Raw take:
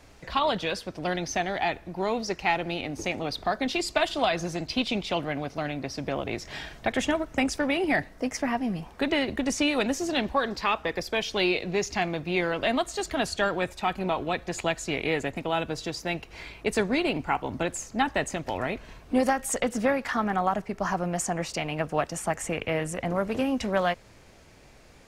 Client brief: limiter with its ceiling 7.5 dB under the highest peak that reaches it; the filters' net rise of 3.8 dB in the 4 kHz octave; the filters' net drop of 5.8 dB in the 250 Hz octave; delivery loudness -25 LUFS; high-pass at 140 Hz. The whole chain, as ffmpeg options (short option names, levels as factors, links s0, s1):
-af "highpass=140,equalizer=f=250:t=o:g=-7,equalizer=f=4000:t=o:g=5,volume=1.78,alimiter=limit=0.266:level=0:latency=1"